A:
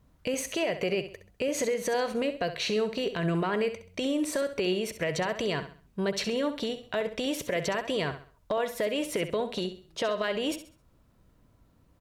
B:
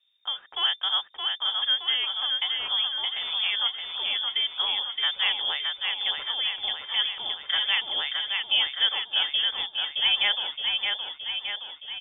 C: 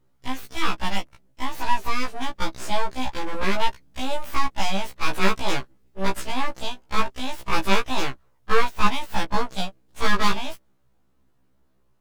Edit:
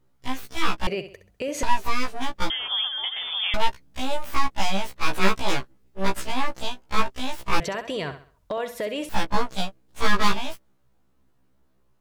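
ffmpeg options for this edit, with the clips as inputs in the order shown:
-filter_complex "[0:a]asplit=2[a][b];[2:a]asplit=4[c][d][e][f];[c]atrim=end=0.872[g];[a]atrim=start=0.868:end=1.632[h];[d]atrim=start=1.628:end=2.502[i];[1:a]atrim=start=2.498:end=3.542[j];[e]atrim=start=3.538:end=7.602[k];[b]atrim=start=7.598:end=9.092[l];[f]atrim=start=9.088[m];[g][h]acrossfade=d=0.004:c1=hsin:c2=hsin[n];[n][i]acrossfade=d=0.004:c1=hsin:c2=hsin[o];[o][j]acrossfade=d=0.004:c1=hsin:c2=hsin[p];[p][k]acrossfade=d=0.004:c1=hsin:c2=hsin[q];[q][l]acrossfade=d=0.004:c1=hsin:c2=hsin[r];[r][m]acrossfade=d=0.004:c1=hsin:c2=hsin"

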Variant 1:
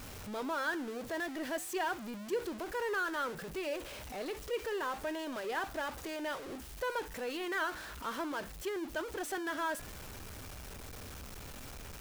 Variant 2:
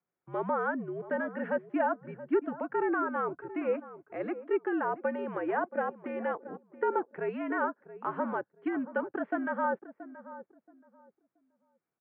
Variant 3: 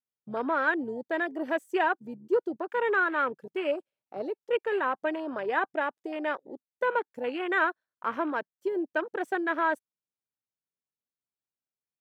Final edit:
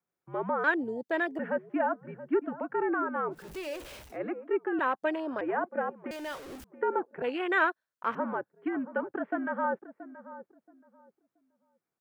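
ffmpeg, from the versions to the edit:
-filter_complex "[2:a]asplit=3[a][b][c];[0:a]asplit=2[d][e];[1:a]asplit=6[f][g][h][i][j][k];[f]atrim=end=0.642[l];[a]atrim=start=0.638:end=1.392[m];[g]atrim=start=1.388:end=3.54[n];[d]atrim=start=3.3:end=4.19[o];[h]atrim=start=3.95:end=4.792[p];[b]atrim=start=4.788:end=5.412[q];[i]atrim=start=5.408:end=6.112[r];[e]atrim=start=6.108:end=6.642[s];[j]atrim=start=6.638:end=7.222[t];[c]atrim=start=7.218:end=8.152[u];[k]atrim=start=8.148[v];[l][m]acrossfade=d=0.004:c1=hsin:c2=hsin[w];[w][n]acrossfade=d=0.004:c1=hsin:c2=hsin[x];[x][o]acrossfade=d=0.24:c1=tri:c2=tri[y];[y][p]acrossfade=d=0.24:c1=tri:c2=tri[z];[z][q]acrossfade=d=0.004:c1=hsin:c2=hsin[aa];[aa][r]acrossfade=d=0.004:c1=hsin:c2=hsin[ab];[ab][s]acrossfade=d=0.004:c1=hsin:c2=hsin[ac];[ac][t]acrossfade=d=0.004:c1=hsin:c2=hsin[ad];[ad][u]acrossfade=d=0.004:c1=hsin:c2=hsin[ae];[ae][v]acrossfade=d=0.004:c1=hsin:c2=hsin"

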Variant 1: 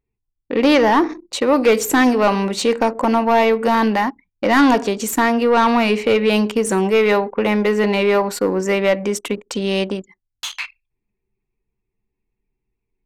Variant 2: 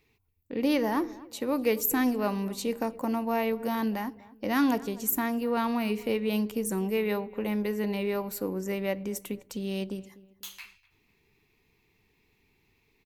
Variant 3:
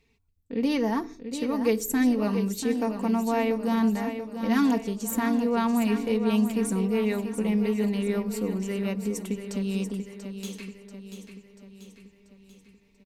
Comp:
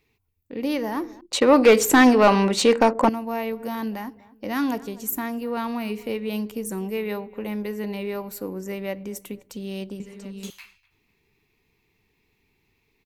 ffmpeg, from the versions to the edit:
-filter_complex "[1:a]asplit=3[a][b][c];[a]atrim=end=1.212[d];[0:a]atrim=start=1.208:end=3.092[e];[b]atrim=start=3.088:end=10.002[f];[2:a]atrim=start=9.998:end=10.502[g];[c]atrim=start=10.498[h];[d][e]acrossfade=d=0.004:c1=hsin:c2=hsin[i];[i][f]acrossfade=d=0.004:c1=hsin:c2=hsin[j];[j][g]acrossfade=d=0.004:c1=hsin:c2=hsin[k];[k][h]acrossfade=d=0.004:c1=hsin:c2=hsin"

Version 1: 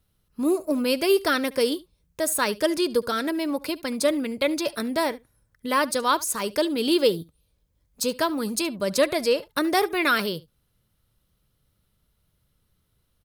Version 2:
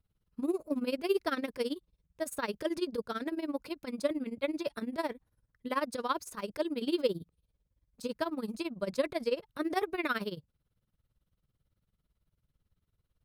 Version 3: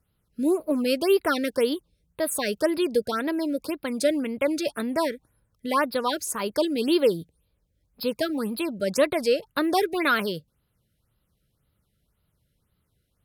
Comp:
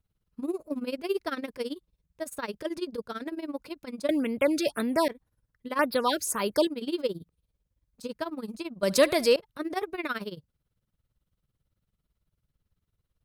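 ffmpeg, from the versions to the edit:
-filter_complex "[2:a]asplit=2[a][b];[1:a]asplit=4[c][d][e][f];[c]atrim=end=4.092[g];[a]atrim=start=4.088:end=5.082[h];[d]atrim=start=5.078:end=5.792[i];[b]atrim=start=5.788:end=6.672[j];[e]atrim=start=6.668:end=8.832[k];[0:a]atrim=start=8.828:end=9.362[l];[f]atrim=start=9.358[m];[g][h]acrossfade=d=0.004:c1=hsin:c2=hsin[n];[n][i]acrossfade=d=0.004:c1=hsin:c2=hsin[o];[o][j]acrossfade=d=0.004:c1=hsin:c2=hsin[p];[p][k]acrossfade=d=0.004:c1=hsin:c2=hsin[q];[q][l]acrossfade=d=0.004:c1=hsin:c2=hsin[r];[r][m]acrossfade=d=0.004:c1=hsin:c2=hsin"

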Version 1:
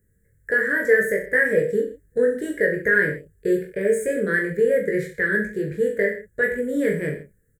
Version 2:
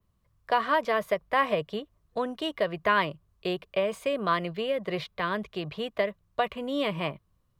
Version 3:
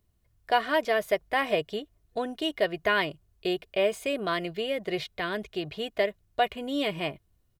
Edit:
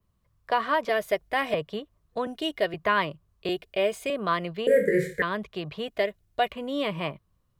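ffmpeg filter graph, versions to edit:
-filter_complex "[2:a]asplit=4[a][b][c][d];[1:a]asplit=6[e][f][g][h][i][j];[e]atrim=end=0.892[k];[a]atrim=start=0.888:end=1.542[l];[f]atrim=start=1.538:end=2.272[m];[b]atrim=start=2.268:end=2.742[n];[g]atrim=start=2.738:end=3.492[o];[c]atrim=start=3.488:end=4.102[p];[h]atrim=start=4.098:end=4.672[q];[0:a]atrim=start=4.668:end=5.222[r];[i]atrim=start=5.218:end=5.882[s];[d]atrim=start=5.878:end=6.522[t];[j]atrim=start=6.518[u];[k][l]acrossfade=d=0.004:c1=hsin:c2=hsin[v];[v][m]acrossfade=d=0.004:c1=hsin:c2=hsin[w];[w][n]acrossfade=d=0.004:c1=hsin:c2=hsin[x];[x][o]acrossfade=d=0.004:c1=hsin:c2=hsin[y];[y][p]acrossfade=d=0.004:c1=hsin:c2=hsin[z];[z][q]acrossfade=d=0.004:c1=hsin:c2=hsin[aa];[aa][r]acrossfade=d=0.004:c1=hsin:c2=hsin[ab];[ab][s]acrossfade=d=0.004:c1=hsin:c2=hsin[ac];[ac][t]acrossfade=d=0.004:c1=hsin:c2=hsin[ad];[ad][u]acrossfade=d=0.004:c1=hsin:c2=hsin"

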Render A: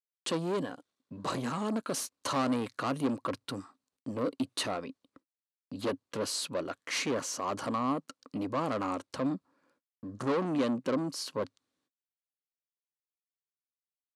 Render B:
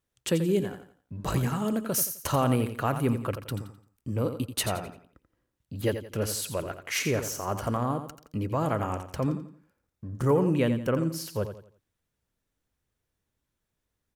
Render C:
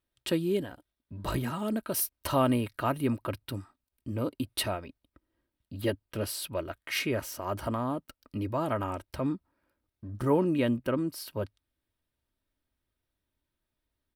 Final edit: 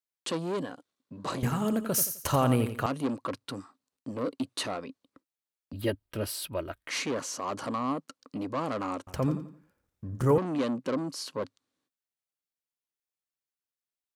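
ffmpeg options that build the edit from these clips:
-filter_complex "[1:a]asplit=2[a][b];[0:a]asplit=4[c][d][e][f];[c]atrim=end=1.432[g];[a]atrim=start=1.428:end=2.862[h];[d]atrim=start=2.858:end=5.732[i];[2:a]atrim=start=5.728:end=6.892[j];[e]atrim=start=6.888:end=9.072[k];[b]atrim=start=9.068:end=10.382[l];[f]atrim=start=10.378[m];[g][h]acrossfade=d=0.004:c1=hsin:c2=hsin[n];[n][i]acrossfade=d=0.004:c1=hsin:c2=hsin[o];[o][j]acrossfade=d=0.004:c1=hsin:c2=hsin[p];[p][k]acrossfade=d=0.004:c1=hsin:c2=hsin[q];[q][l]acrossfade=d=0.004:c1=hsin:c2=hsin[r];[r][m]acrossfade=d=0.004:c1=hsin:c2=hsin"

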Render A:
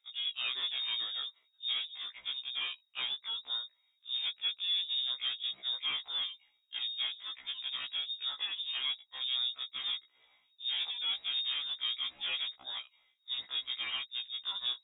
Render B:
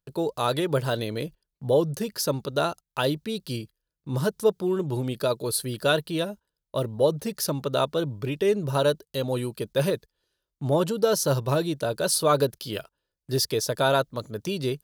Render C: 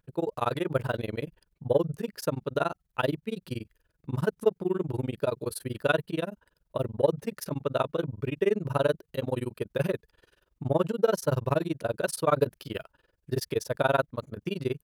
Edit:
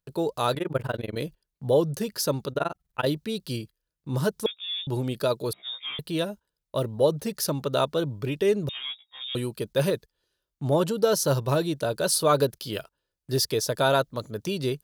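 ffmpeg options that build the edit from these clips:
-filter_complex "[2:a]asplit=2[a][b];[0:a]asplit=3[c][d][e];[1:a]asplit=6[f][g][h][i][j][k];[f]atrim=end=0.552[l];[a]atrim=start=0.548:end=1.162[m];[g]atrim=start=1.158:end=2.522[n];[b]atrim=start=2.518:end=3.062[o];[h]atrim=start=3.058:end=4.462[p];[c]atrim=start=4.458:end=4.872[q];[i]atrim=start=4.868:end=5.532[r];[d]atrim=start=5.528:end=5.992[s];[j]atrim=start=5.988:end=8.692[t];[e]atrim=start=8.688:end=9.352[u];[k]atrim=start=9.348[v];[l][m]acrossfade=d=0.004:c1=hsin:c2=hsin[w];[w][n]acrossfade=d=0.004:c1=hsin:c2=hsin[x];[x][o]acrossfade=d=0.004:c1=hsin:c2=hsin[y];[y][p]acrossfade=d=0.004:c1=hsin:c2=hsin[z];[z][q]acrossfade=d=0.004:c1=hsin:c2=hsin[aa];[aa][r]acrossfade=d=0.004:c1=hsin:c2=hsin[ab];[ab][s]acrossfade=d=0.004:c1=hsin:c2=hsin[ac];[ac][t]acrossfade=d=0.004:c1=hsin:c2=hsin[ad];[ad][u]acrossfade=d=0.004:c1=hsin:c2=hsin[ae];[ae][v]acrossfade=d=0.004:c1=hsin:c2=hsin"

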